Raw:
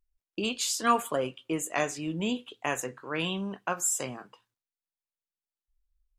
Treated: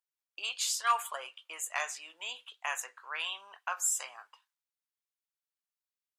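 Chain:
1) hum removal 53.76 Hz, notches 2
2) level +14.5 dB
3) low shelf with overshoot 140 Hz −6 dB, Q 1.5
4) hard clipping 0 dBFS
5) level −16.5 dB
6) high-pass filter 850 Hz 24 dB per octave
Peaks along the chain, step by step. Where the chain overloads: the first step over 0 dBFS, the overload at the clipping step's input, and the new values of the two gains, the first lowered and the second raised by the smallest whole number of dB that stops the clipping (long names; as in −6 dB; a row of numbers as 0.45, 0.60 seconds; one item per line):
−10.5, +4.0, +4.0, 0.0, −16.5, −17.0 dBFS
step 2, 4.0 dB
step 2 +10.5 dB, step 5 −12.5 dB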